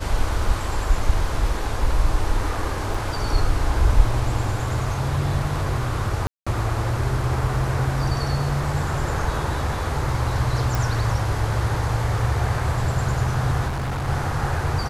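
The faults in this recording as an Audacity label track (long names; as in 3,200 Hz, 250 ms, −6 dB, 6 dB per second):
2.940000	2.940000	drop-out 4.5 ms
6.270000	6.460000	drop-out 195 ms
10.750000	10.750000	click
13.670000	14.090000	clipping −23 dBFS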